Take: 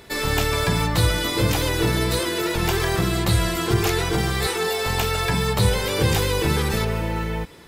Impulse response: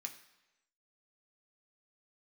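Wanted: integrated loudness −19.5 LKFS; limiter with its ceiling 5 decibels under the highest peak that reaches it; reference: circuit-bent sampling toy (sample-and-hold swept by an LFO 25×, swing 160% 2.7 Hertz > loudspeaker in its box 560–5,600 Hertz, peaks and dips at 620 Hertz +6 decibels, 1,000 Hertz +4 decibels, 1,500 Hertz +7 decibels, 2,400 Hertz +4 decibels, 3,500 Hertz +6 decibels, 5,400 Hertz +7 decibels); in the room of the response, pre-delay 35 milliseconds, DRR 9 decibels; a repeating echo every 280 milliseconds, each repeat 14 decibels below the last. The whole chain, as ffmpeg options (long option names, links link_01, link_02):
-filter_complex "[0:a]alimiter=limit=-12dB:level=0:latency=1,aecho=1:1:280|560:0.2|0.0399,asplit=2[link_01][link_02];[1:a]atrim=start_sample=2205,adelay=35[link_03];[link_02][link_03]afir=irnorm=-1:irlink=0,volume=-5.5dB[link_04];[link_01][link_04]amix=inputs=2:normalize=0,acrusher=samples=25:mix=1:aa=0.000001:lfo=1:lforange=40:lforate=2.7,highpass=560,equalizer=frequency=620:width_type=q:width=4:gain=6,equalizer=frequency=1000:width_type=q:width=4:gain=4,equalizer=frequency=1500:width_type=q:width=4:gain=7,equalizer=frequency=2400:width_type=q:width=4:gain=4,equalizer=frequency=3500:width_type=q:width=4:gain=6,equalizer=frequency=5400:width_type=q:width=4:gain=7,lowpass=frequency=5600:width=0.5412,lowpass=frequency=5600:width=1.3066,volume=4dB"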